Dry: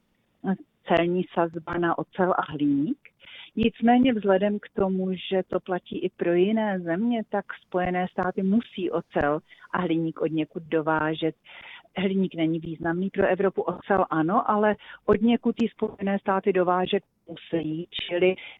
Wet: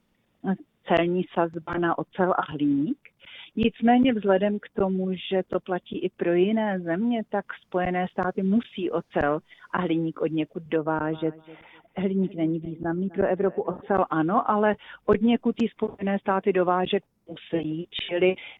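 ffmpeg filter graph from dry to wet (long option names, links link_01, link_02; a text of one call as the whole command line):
ffmpeg -i in.wav -filter_complex "[0:a]asettb=1/sr,asplit=3[link_01][link_02][link_03];[link_01]atrim=end=10.764[link_04];[link_02]atrim=start=10.76:end=13.95,asetpts=PTS-STARTPTS,afade=type=in:duration=0.004:curve=qsin,afade=type=out:start_time=3.186:duration=0.004:curve=qsin,equalizer=frequency=3300:width=0.54:gain=-11,aecho=1:1:253|506:0.1|0.024,atrim=end_sample=140679[link_05];[link_03]atrim=start=13.946[link_06];[link_04][link_05]acrossfade=duration=0.004:curve1=hsin:curve2=qsin[link_07];[link_07][link_06]acrossfade=duration=0.004:curve1=qsin:curve2=hsin" out.wav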